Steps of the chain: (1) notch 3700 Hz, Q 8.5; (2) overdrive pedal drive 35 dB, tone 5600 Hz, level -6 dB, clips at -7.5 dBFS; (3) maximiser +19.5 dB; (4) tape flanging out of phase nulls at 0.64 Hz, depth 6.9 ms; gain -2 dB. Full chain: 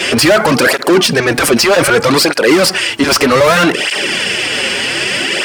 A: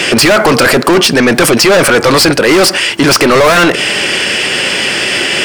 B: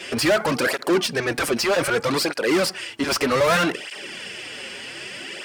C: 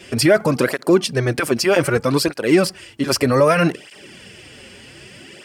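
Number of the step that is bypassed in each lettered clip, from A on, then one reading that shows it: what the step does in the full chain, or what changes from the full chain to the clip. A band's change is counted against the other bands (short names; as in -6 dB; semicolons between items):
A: 4, crest factor change -3.0 dB; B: 3, crest factor change +3.0 dB; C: 2, 125 Hz band +9.0 dB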